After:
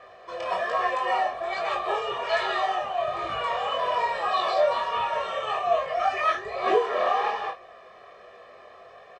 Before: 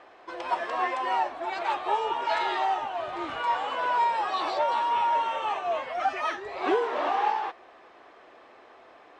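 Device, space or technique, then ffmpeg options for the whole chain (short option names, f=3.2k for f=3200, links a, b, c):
double-tracked vocal: -filter_complex "[0:a]asplit=2[a][b];[b]adelay=33,volume=-8.5dB[c];[a][c]amix=inputs=2:normalize=0,flanger=delay=18:depth=5.7:speed=1.2,equalizer=f=150:w=0.57:g=4.5,aecho=1:1:1.7:0.97,volume=2.5dB"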